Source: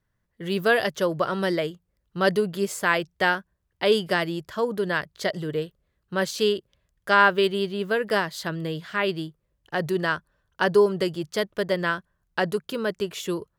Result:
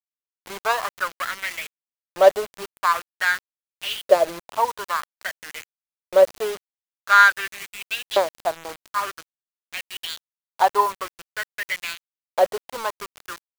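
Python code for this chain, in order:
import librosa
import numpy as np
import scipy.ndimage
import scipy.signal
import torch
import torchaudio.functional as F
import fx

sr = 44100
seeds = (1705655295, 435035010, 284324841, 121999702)

y = scipy.ndimage.median_filter(x, 25, mode='constant')
y = fx.filter_lfo_highpass(y, sr, shape='saw_up', hz=0.49, low_hz=520.0, high_hz=3500.0, q=5.7)
y = fx.quant_dither(y, sr, seeds[0], bits=6, dither='none')
y = y * librosa.db_to_amplitude(2.0)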